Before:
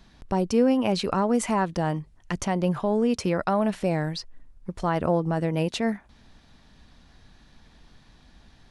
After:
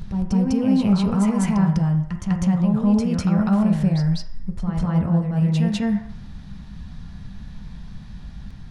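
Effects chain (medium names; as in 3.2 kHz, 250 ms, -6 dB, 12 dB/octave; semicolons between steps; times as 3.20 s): resonant low shelf 240 Hz +13.5 dB, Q 1.5; compression, threshold -21 dBFS, peak gain reduction 12 dB; peak limiter -20.5 dBFS, peak gain reduction 9 dB; reverse echo 200 ms -4.5 dB; on a send at -3 dB: reverberation RT60 0.65 s, pre-delay 3 ms; on the sum: trim +3.5 dB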